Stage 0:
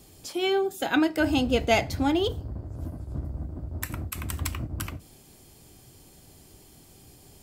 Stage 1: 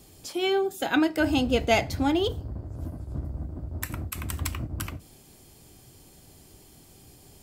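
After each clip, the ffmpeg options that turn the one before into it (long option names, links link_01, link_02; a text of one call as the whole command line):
ffmpeg -i in.wav -af anull out.wav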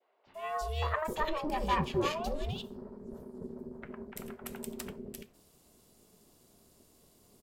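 ffmpeg -i in.wav -filter_complex "[0:a]adynamicequalizer=threshold=0.01:dfrequency=920:dqfactor=0.73:tfrequency=920:tqfactor=0.73:attack=5:release=100:ratio=0.375:range=4:mode=boostabove:tftype=bell,aeval=exprs='val(0)*sin(2*PI*310*n/s)':channel_layout=same,acrossover=split=560|2300[link_01][link_02][link_03];[link_01]adelay=260[link_04];[link_03]adelay=340[link_05];[link_04][link_02][link_05]amix=inputs=3:normalize=0,volume=-7dB" out.wav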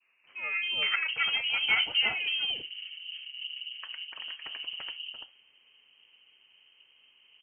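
ffmpeg -i in.wav -af "lowpass=frequency=2700:width_type=q:width=0.5098,lowpass=frequency=2700:width_type=q:width=0.6013,lowpass=frequency=2700:width_type=q:width=0.9,lowpass=frequency=2700:width_type=q:width=2.563,afreqshift=-3200,volume=3.5dB" out.wav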